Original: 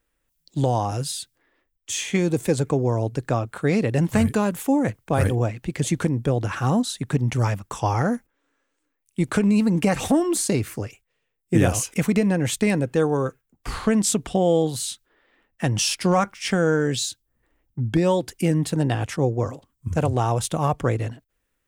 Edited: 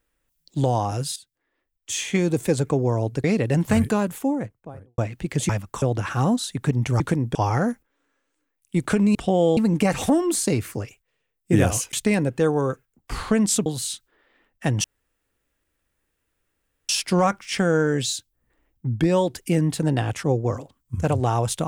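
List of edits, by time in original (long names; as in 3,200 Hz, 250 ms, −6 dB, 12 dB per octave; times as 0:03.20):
0:01.16–0:01.93: fade in quadratic, from −14 dB
0:03.24–0:03.68: remove
0:04.32–0:05.42: fade out and dull
0:05.93–0:06.28: swap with 0:07.46–0:07.79
0:11.95–0:12.49: remove
0:14.22–0:14.64: move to 0:09.59
0:15.82: splice in room tone 2.05 s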